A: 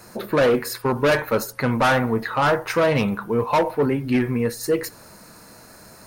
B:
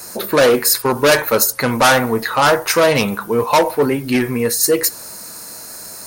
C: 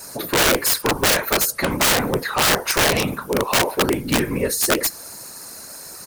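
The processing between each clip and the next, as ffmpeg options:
ffmpeg -i in.wav -af "bass=frequency=250:gain=-6,treble=frequency=4000:gain=12,volume=6dB" out.wav
ffmpeg -i in.wav -af "aresample=32000,aresample=44100,afftfilt=real='hypot(re,im)*cos(2*PI*random(0))':imag='hypot(re,im)*sin(2*PI*random(1))':win_size=512:overlap=0.75,aeval=exprs='(mod(4.47*val(0)+1,2)-1)/4.47':channel_layout=same,volume=2.5dB" out.wav

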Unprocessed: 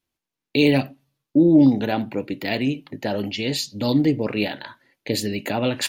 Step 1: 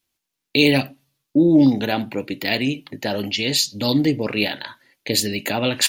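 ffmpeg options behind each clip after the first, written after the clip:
ffmpeg -i in.wav -af "highshelf=frequency=2100:gain=9" out.wav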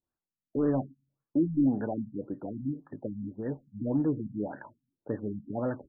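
ffmpeg -i in.wav -af "asoftclip=type=tanh:threshold=-9dB,afftfilt=real='re*lt(b*sr/1024,250*pow(1900/250,0.5+0.5*sin(2*PI*1.8*pts/sr)))':imag='im*lt(b*sr/1024,250*pow(1900/250,0.5+0.5*sin(2*PI*1.8*pts/sr)))':win_size=1024:overlap=0.75,volume=-8dB" out.wav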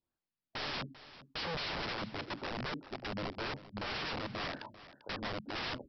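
ffmpeg -i in.wav -af "aresample=11025,aeval=exprs='(mod(47.3*val(0)+1,2)-1)/47.3':channel_layout=same,aresample=44100,aecho=1:1:394:0.158" out.wav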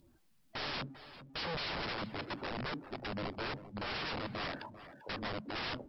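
ffmpeg -i in.wav -af "aeval=exprs='val(0)+0.5*0.00282*sgn(val(0))':channel_layout=same,acompressor=mode=upward:threshold=-58dB:ratio=2.5,afftdn=noise_reduction=17:noise_floor=-53,volume=-1dB" out.wav

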